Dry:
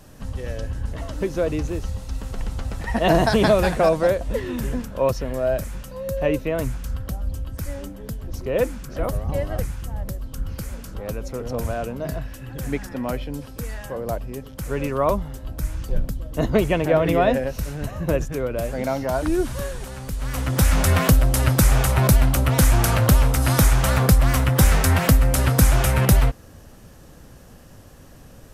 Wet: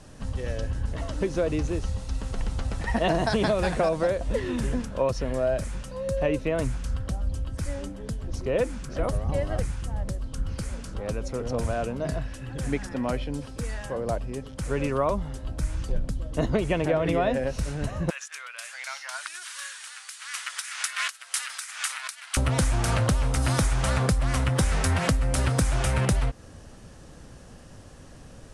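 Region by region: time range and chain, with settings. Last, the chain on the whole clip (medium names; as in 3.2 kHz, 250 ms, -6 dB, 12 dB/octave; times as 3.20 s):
18.10–22.37 s: compressor with a negative ratio -20 dBFS + high-pass 1.4 kHz 24 dB/octave
whole clip: elliptic low-pass 10 kHz, stop band 80 dB; compression, threshold -20 dBFS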